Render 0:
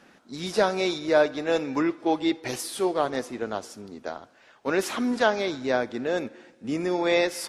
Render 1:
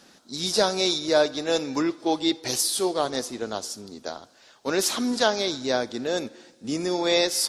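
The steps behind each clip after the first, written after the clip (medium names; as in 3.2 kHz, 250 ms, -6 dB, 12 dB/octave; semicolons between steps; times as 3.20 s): resonant high shelf 3.2 kHz +9 dB, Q 1.5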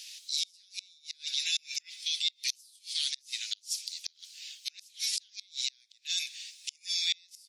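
steep high-pass 2.3 kHz 48 dB/octave; in parallel at +1 dB: compressor with a negative ratio -41 dBFS, ratio -1; on the sum: inverted gate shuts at -16 dBFS, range -33 dB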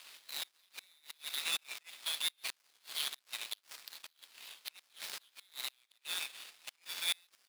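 dead-time distortion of 0.099 ms; high-pass 1.3 kHz 6 dB/octave; treble shelf 7.8 kHz -10 dB; trim +6 dB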